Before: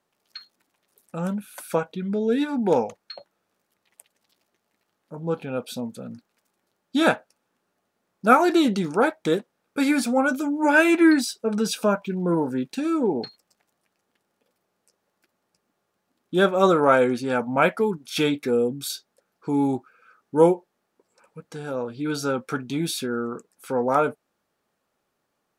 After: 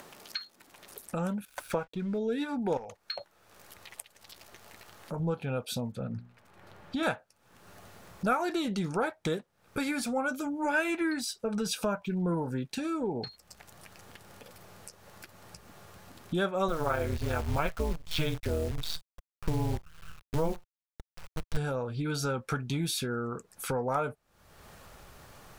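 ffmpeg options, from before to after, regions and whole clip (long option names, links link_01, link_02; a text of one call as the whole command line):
ffmpeg -i in.wav -filter_complex "[0:a]asettb=1/sr,asplit=3[link_01][link_02][link_03];[link_01]atrim=end=1.454[link_04];[link_02]atrim=start=1.45:end=2.18,asetpts=PTS-STARTPTS,afade=type=in:duration=0.004:curve=qsin,afade=type=out:start_time=0.726:duration=0.004:curve=qsin,lowpass=frequency=3200:poles=1,aeval=exprs='sgn(val(0))*max(abs(val(0))-0.00251,0)':channel_layout=same[link_05];[link_03]atrim=start=2.176[link_06];[link_04][link_05]acrossfade=duration=0.004:curve1=hsin:curve2=qsin[link_07];[link_07][link_06]acrossfade=duration=0.004:curve1=qsin:curve2=hsin,asettb=1/sr,asplit=3[link_08][link_09][link_10];[link_08]atrim=end=2.774[link_11];[link_09]atrim=start=2.77:end=5.2,asetpts=PTS-STARTPTS,afade=type=in:duration=0.004:curve=qsin,afade=type=out:start_time=2.426:duration=0.004:curve=qsin,equalizer=frequency=130:width=0.61:gain=-5,acompressor=threshold=-32dB:ratio=3:attack=3.2:release=140:knee=1:detection=peak,volume=28.5dB,asoftclip=hard,volume=-28.5dB[link_12];[link_10]atrim=start=5.196[link_13];[link_11][link_12]acrossfade=duration=0.004:curve1=hsin:curve2=qsin[link_14];[link_14][link_13]acrossfade=duration=0.004:curve1=qsin:curve2=hsin,asettb=1/sr,asplit=3[link_15][link_16][link_17];[link_15]atrim=end=5.924[link_18];[link_16]atrim=start=5.92:end=7.03,asetpts=PTS-STARTPTS,afade=type=in:duration=0.004:curve=qsin,afade=type=out:start_time=1.106:duration=0.004:curve=qsin,bass=frequency=250:gain=0,treble=frequency=4000:gain=-14,bandreject=frequency=60:width_type=h:width=6,bandreject=frequency=120:width_type=h:width=6,bandreject=frequency=180:width_type=h:width=6,bandreject=frequency=240:width_type=h:width=6,bandreject=frequency=300:width_type=h:width=6,bandreject=frequency=360:width_type=h:width=6,bandreject=frequency=420:width_type=h:width=6[link_19];[link_17]atrim=start=7.026[link_20];[link_18][link_19]acrossfade=duration=0.004:curve1=hsin:curve2=qsin[link_21];[link_21][link_20]acrossfade=duration=0.004:curve1=qsin:curve2=hsin,asettb=1/sr,asplit=3[link_22][link_23][link_24];[link_22]atrim=end=16.684[link_25];[link_23]atrim=start=16.68:end=21.57,asetpts=PTS-STARTPTS,afade=type=in:duration=0.004:curve=qsin,afade=type=out:start_time=4.886:duration=0.004:curve=qsin,lowpass=frequency=4900:width=0.5412,lowpass=frequency=4900:width=1.3066,tremolo=f=160:d=0.824,acrusher=bits=7:dc=4:mix=0:aa=0.000001[link_26];[link_24]atrim=start=21.566[link_27];[link_25][link_26]acrossfade=duration=0.004:curve1=hsin:curve2=qsin[link_28];[link_28][link_27]acrossfade=duration=0.004:curve1=qsin:curve2=hsin,acompressor=threshold=-38dB:ratio=2.5,asubboost=boost=8.5:cutoff=87,acompressor=mode=upward:threshold=-41dB:ratio=2.5,volume=5.5dB" out.wav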